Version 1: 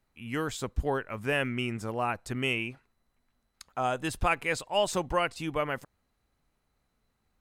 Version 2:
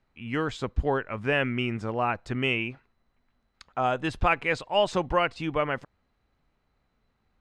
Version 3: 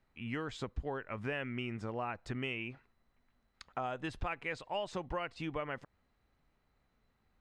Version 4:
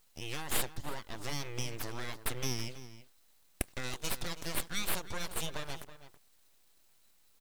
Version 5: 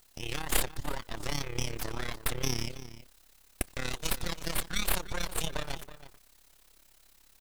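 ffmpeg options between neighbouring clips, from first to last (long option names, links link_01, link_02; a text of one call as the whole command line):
ffmpeg -i in.wav -af "lowpass=3900,volume=3.5dB" out.wav
ffmpeg -i in.wav -af "equalizer=frequency=1900:width_type=o:width=0.2:gain=2.5,acompressor=threshold=-33dB:ratio=4,volume=-3dB" out.wav
ffmpeg -i in.wav -filter_complex "[0:a]aexciter=amount=10.5:drive=7.9:freq=3300,aeval=exprs='abs(val(0))':channel_layout=same,asplit=2[link_01][link_02];[link_02]adelay=326.5,volume=-13dB,highshelf=frequency=4000:gain=-7.35[link_03];[link_01][link_03]amix=inputs=2:normalize=0" out.wav
ffmpeg -i in.wav -af "acrusher=bits=10:mix=0:aa=0.000001,tremolo=f=34:d=0.788,volume=7dB" out.wav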